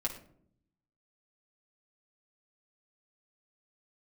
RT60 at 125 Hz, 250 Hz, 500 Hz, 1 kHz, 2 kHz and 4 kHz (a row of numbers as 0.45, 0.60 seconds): 1.2, 1.0, 0.75, 0.50, 0.40, 0.35 seconds